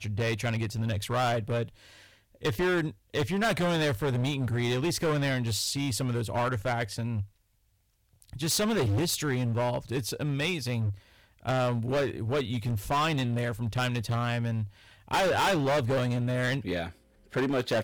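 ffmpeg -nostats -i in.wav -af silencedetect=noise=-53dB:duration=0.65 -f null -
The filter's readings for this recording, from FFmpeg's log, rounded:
silence_start: 7.29
silence_end: 8.14 | silence_duration: 0.85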